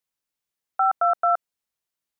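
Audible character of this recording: noise floor -87 dBFS; spectral tilt -13.0 dB/octave

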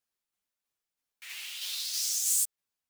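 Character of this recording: tremolo saw down 3.1 Hz, depth 40%; a shimmering, thickened sound

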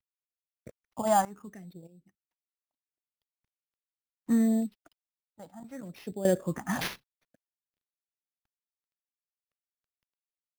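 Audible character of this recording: a quantiser's noise floor 12-bit, dither none; phasing stages 4, 0.69 Hz, lowest notch 400–1200 Hz; aliases and images of a low sample rate 8 kHz, jitter 0%; random-step tremolo 1.6 Hz, depth 95%

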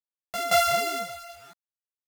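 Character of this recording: a buzz of ramps at a fixed pitch in blocks of 64 samples; random-step tremolo 3.9 Hz, depth 85%; a quantiser's noise floor 10-bit, dither none; a shimmering, thickened sound

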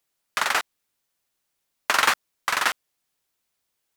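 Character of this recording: noise floor -78 dBFS; spectral tilt -1.0 dB/octave

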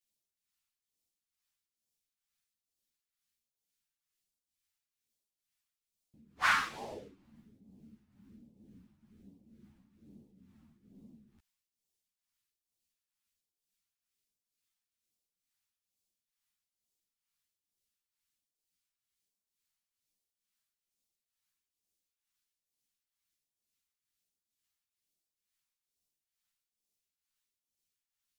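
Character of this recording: phasing stages 2, 1.2 Hz, lowest notch 420–1400 Hz; tremolo triangle 2.2 Hz, depth 70%; a shimmering, thickened sound

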